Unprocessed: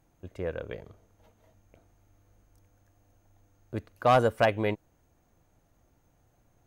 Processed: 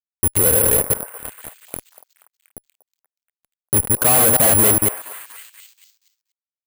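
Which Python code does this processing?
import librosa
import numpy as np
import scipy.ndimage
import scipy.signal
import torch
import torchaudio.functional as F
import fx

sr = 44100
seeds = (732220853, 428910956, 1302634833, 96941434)

y = fx.reverse_delay(x, sr, ms=104, wet_db=-7)
y = fx.lowpass(y, sr, hz=3100.0, slope=6)
y = fx.level_steps(y, sr, step_db=15)
y = fx.add_hum(y, sr, base_hz=60, snr_db=25)
y = fx.fuzz(y, sr, gain_db=53.0, gate_db=-55.0)
y = fx.echo_stepped(y, sr, ms=239, hz=820.0, octaves=0.7, feedback_pct=70, wet_db=-10.0)
y = (np.kron(scipy.signal.resample_poly(y, 1, 4), np.eye(4)[0]) * 4)[:len(y)]
y = y * 10.0 ** (-5.0 / 20.0)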